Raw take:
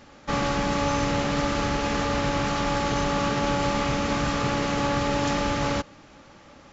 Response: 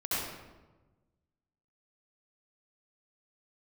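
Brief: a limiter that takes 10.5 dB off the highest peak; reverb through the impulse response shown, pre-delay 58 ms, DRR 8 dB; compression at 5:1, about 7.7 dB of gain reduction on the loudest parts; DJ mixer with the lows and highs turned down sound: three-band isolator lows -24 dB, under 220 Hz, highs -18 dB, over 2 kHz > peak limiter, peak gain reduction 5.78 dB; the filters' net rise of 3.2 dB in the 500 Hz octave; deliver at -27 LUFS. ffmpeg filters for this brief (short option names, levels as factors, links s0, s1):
-filter_complex "[0:a]equalizer=f=500:t=o:g=4,acompressor=threshold=0.0398:ratio=5,alimiter=level_in=1.68:limit=0.0631:level=0:latency=1,volume=0.596,asplit=2[s0][s1];[1:a]atrim=start_sample=2205,adelay=58[s2];[s1][s2]afir=irnorm=-1:irlink=0,volume=0.168[s3];[s0][s3]amix=inputs=2:normalize=0,acrossover=split=220 2000:gain=0.0631 1 0.126[s4][s5][s6];[s4][s5][s6]amix=inputs=3:normalize=0,volume=5.62,alimiter=limit=0.119:level=0:latency=1"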